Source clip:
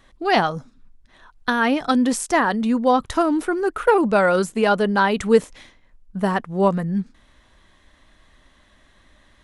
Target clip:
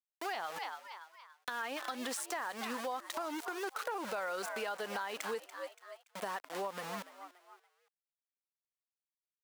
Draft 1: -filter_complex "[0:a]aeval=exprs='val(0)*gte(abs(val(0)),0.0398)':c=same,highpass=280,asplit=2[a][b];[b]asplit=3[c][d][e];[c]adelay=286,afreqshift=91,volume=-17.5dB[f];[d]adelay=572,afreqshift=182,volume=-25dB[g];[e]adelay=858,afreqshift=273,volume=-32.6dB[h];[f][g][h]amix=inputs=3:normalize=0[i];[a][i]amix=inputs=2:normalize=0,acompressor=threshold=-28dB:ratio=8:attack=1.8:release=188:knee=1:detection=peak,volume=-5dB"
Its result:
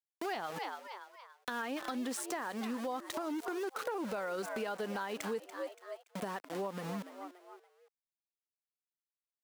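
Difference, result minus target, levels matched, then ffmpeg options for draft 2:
250 Hz band +6.5 dB
-filter_complex "[0:a]aeval=exprs='val(0)*gte(abs(val(0)),0.0398)':c=same,highpass=640,asplit=2[a][b];[b]asplit=3[c][d][e];[c]adelay=286,afreqshift=91,volume=-17.5dB[f];[d]adelay=572,afreqshift=182,volume=-25dB[g];[e]adelay=858,afreqshift=273,volume=-32.6dB[h];[f][g][h]amix=inputs=3:normalize=0[i];[a][i]amix=inputs=2:normalize=0,acompressor=threshold=-28dB:ratio=8:attack=1.8:release=188:knee=1:detection=peak,volume=-5dB"

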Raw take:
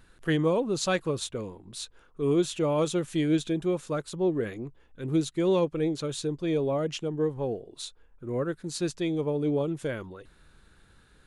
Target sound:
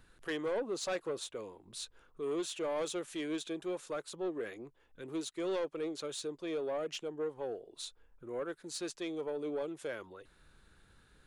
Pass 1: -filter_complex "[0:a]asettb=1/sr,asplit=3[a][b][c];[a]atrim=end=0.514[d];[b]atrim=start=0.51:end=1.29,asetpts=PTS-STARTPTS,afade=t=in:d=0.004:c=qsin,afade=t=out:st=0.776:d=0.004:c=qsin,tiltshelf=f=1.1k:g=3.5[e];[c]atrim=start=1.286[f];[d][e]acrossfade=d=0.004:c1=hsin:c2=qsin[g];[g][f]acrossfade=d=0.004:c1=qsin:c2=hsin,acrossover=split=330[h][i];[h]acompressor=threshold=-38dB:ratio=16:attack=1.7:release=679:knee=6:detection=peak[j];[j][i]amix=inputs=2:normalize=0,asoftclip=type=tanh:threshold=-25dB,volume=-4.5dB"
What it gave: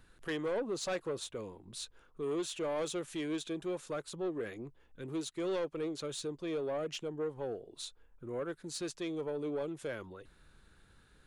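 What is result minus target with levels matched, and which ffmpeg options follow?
compressor: peak gain reduction -10.5 dB
-filter_complex "[0:a]asettb=1/sr,asplit=3[a][b][c];[a]atrim=end=0.514[d];[b]atrim=start=0.51:end=1.29,asetpts=PTS-STARTPTS,afade=t=in:d=0.004:c=qsin,afade=t=out:st=0.776:d=0.004:c=qsin,tiltshelf=f=1.1k:g=3.5[e];[c]atrim=start=1.286[f];[d][e]acrossfade=d=0.004:c1=hsin:c2=qsin[g];[g][f]acrossfade=d=0.004:c1=qsin:c2=hsin,acrossover=split=330[h][i];[h]acompressor=threshold=-49dB:ratio=16:attack=1.7:release=679:knee=6:detection=peak[j];[j][i]amix=inputs=2:normalize=0,asoftclip=type=tanh:threshold=-25dB,volume=-4.5dB"

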